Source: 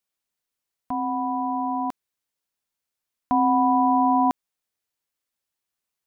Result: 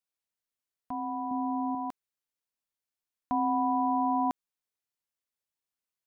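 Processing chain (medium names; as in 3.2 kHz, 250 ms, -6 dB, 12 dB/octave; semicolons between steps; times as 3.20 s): 1.31–1.75 s: bass shelf 280 Hz +10.5 dB; trim -8 dB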